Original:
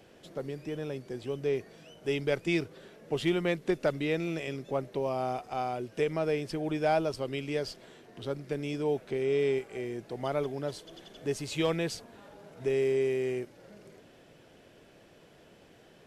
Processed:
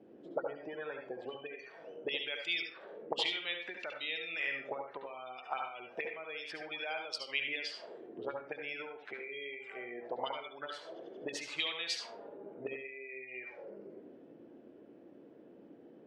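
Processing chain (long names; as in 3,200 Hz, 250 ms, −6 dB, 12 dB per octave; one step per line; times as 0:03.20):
gate on every frequency bin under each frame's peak −30 dB strong
low-shelf EQ 230 Hz −9 dB
envelope filter 250–4,200 Hz, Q 2.7, up, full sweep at −30 dBFS
on a send: convolution reverb, pre-delay 68 ms, DRR 3 dB
on the sum: level +9.5 dB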